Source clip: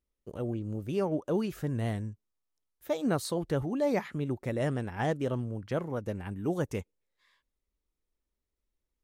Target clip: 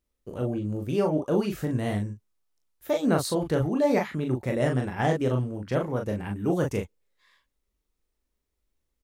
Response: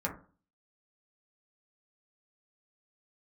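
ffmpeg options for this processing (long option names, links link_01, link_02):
-af "aecho=1:1:24|39:0.316|0.596,volume=4dB"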